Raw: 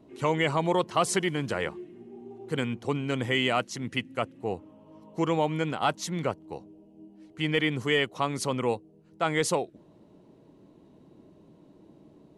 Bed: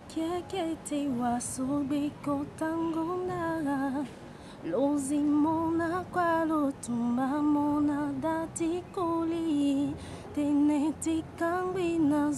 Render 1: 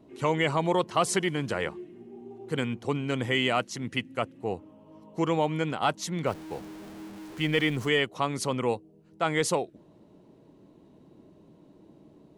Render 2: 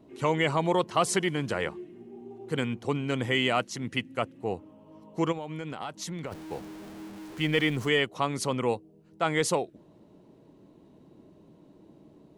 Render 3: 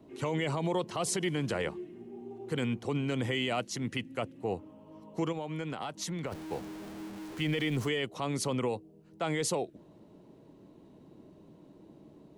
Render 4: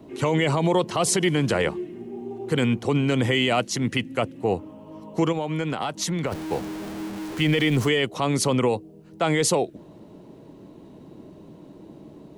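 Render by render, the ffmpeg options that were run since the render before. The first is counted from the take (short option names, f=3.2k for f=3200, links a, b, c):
-filter_complex "[0:a]asettb=1/sr,asplit=3[a][b][c];[a]atrim=end=6.264[d];[b]atrim=start=6.26:end=7.89,asetpts=PTS-STARTPTS,afade=t=in:d=0.004:c=qsin,afade=t=out:st=1.626:d=0.004:c=qsin,aeval=exprs='val(0)+0.5*0.01*sgn(val(0))':c=same[e];[c]atrim=start=7.886[f];[d][e]acrossfade=d=0.004:c1=hsin:c2=qsin[g];[g][f]acrossfade=d=0.004:c1=qsin:c2=hsin"
-filter_complex "[0:a]asplit=3[a][b][c];[a]afade=t=out:st=5.31:d=0.02[d];[b]acompressor=threshold=-32dB:ratio=8:attack=3.2:release=140:knee=1:detection=peak,afade=t=in:st=5.31:d=0.02,afade=t=out:st=6.31:d=0.02[e];[c]afade=t=in:st=6.31:d=0.02[f];[d][e][f]amix=inputs=3:normalize=0"
-filter_complex "[0:a]acrossover=split=160|980|1800[a][b][c][d];[c]acompressor=threshold=-46dB:ratio=6[e];[a][b][e][d]amix=inputs=4:normalize=0,alimiter=limit=-22.5dB:level=0:latency=1:release=41"
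-af "volume=10dB"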